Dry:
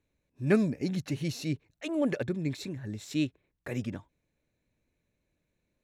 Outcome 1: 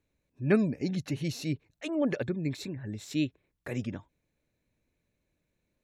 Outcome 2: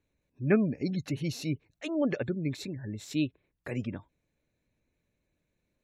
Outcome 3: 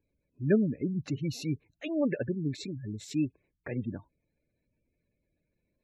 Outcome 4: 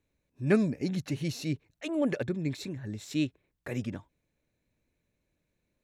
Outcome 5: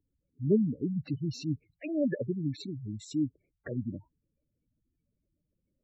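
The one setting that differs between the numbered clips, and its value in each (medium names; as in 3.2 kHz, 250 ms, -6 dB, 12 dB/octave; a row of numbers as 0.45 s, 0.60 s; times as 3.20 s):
spectral gate, under each frame's peak: -45 dB, -35 dB, -20 dB, -60 dB, -10 dB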